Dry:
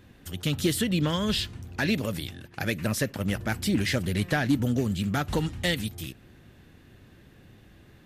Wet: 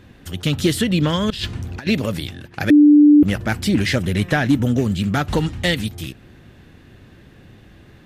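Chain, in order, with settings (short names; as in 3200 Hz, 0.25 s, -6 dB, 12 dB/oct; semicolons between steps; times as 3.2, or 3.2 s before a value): high shelf 9300 Hz -9 dB; 1.3–1.87 negative-ratio compressor -33 dBFS, ratio -0.5; 2.7–3.23 bleep 295 Hz -13.5 dBFS; 3.96–4.83 notch 4500 Hz, Q 7.5; gain +7.5 dB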